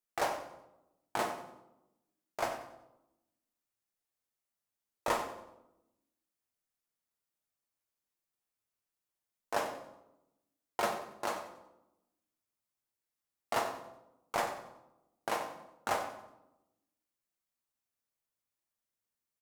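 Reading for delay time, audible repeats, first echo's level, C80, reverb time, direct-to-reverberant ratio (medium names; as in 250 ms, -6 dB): 93 ms, 1, -13.5 dB, 9.5 dB, 0.90 s, 2.5 dB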